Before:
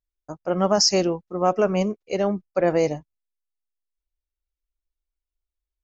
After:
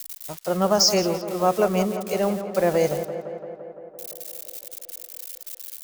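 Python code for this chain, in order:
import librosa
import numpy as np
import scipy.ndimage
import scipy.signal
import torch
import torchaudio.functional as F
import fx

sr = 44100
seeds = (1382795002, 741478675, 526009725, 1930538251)

y = x + 0.5 * 10.0 ** (-24.5 / 20.0) * np.diff(np.sign(x), prepend=np.sign(x[:1]))
y = fx.peak_eq(y, sr, hz=290.0, db=-9.5, octaves=0.28)
y = fx.echo_tape(y, sr, ms=171, feedback_pct=81, wet_db=-9.0, lp_hz=2600.0, drive_db=8.0, wow_cents=8)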